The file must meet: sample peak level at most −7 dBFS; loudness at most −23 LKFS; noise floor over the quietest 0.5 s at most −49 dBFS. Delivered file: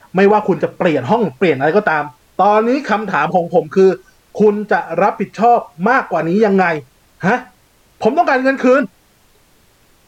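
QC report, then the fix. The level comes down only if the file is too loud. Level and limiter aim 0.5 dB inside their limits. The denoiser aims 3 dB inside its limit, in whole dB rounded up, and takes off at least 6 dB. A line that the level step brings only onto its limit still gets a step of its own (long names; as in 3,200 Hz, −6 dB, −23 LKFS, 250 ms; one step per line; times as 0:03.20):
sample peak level −2.5 dBFS: out of spec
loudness −14.5 LKFS: out of spec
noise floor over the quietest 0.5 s −52 dBFS: in spec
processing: level −9 dB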